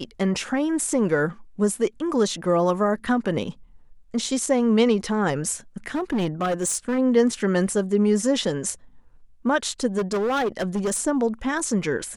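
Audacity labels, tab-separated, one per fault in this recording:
5.870000	6.990000	clipped -19.5 dBFS
9.970000	10.980000	clipped -20 dBFS

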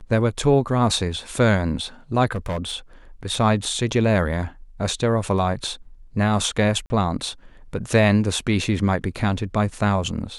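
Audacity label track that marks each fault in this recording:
2.320000	2.740000	clipped -21.5 dBFS
6.860000	6.900000	gap 40 ms

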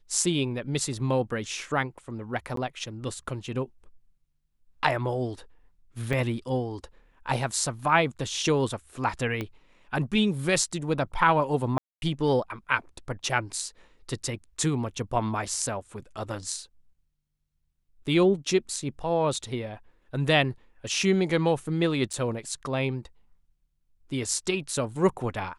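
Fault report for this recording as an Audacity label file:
2.560000	2.570000	gap 13 ms
6.130000	6.130000	gap 3.8 ms
9.410000	9.410000	pop -18 dBFS
11.780000	12.020000	gap 0.241 s
22.130000	22.140000	gap 5.9 ms

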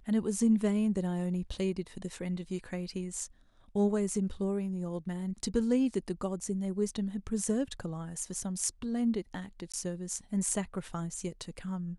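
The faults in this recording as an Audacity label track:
9.720000	9.740000	gap 16 ms

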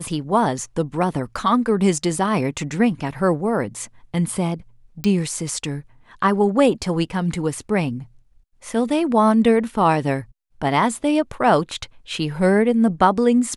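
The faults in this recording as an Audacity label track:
5.040000	5.040000	pop -10 dBFS

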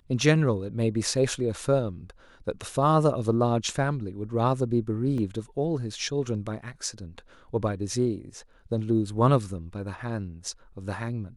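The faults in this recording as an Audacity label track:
5.180000	5.180000	gap 2 ms

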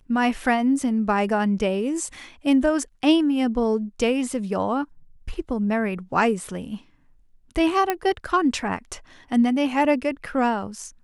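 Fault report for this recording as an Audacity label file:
7.900000	7.900000	pop -8 dBFS

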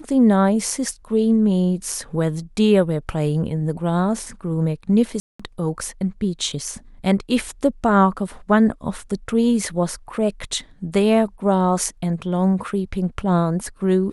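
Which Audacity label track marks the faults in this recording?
5.200000	5.390000	gap 0.195 s

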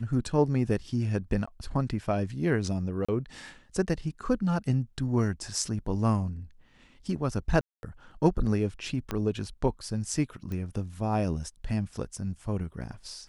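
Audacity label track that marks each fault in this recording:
1.460000	1.480000	gap 15 ms
3.050000	3.080000	gap 35 ms
7.610000	7.830000	gap 0.221 s
9.110000	9.110000	pop -16 dBFS
10.520000	10.520000	pop -24 dBFS

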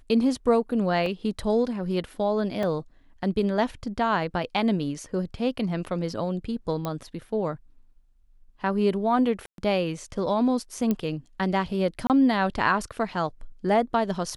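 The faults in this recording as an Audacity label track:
1.060000	1.060000	gap 2.4 ms
2.630000	2.630000	gap 2.8 ms
6.850000	6.850000	pop -16 dBFS
9.460000	9.580000	gap 0.122 s
10.910000	10.910000	pop -13 dBFS
12.070000	12.100000	gap 28 ms

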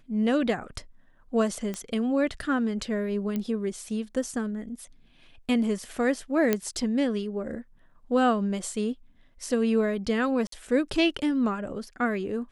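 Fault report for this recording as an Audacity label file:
1.740000	1.740000	pop -19 dBFS
3.360000	3.360000	pop -18 dBFS
6.530000	6.530000	pop -9 dBFS
10.470000	10.520000	gap 53 ms

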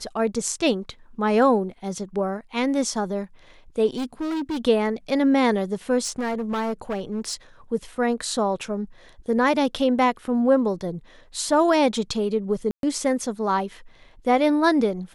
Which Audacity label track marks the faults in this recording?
3.960000	4.650000	clipped -24 dBFS
6.040000	7.340000	clipped -22.5 dBFS
12.710000	12.830000	gap 0.122 s

